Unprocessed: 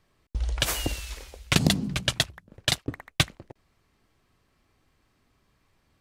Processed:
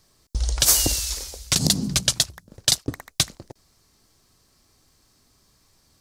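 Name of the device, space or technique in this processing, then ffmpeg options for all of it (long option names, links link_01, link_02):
over-bright horn tweeter: -af "highshelf=frequency=3700:width_type=q:width=1.5:gain=11,alimiter=limit=-8dB:level=0:latency=1:release=96,volume=4dB"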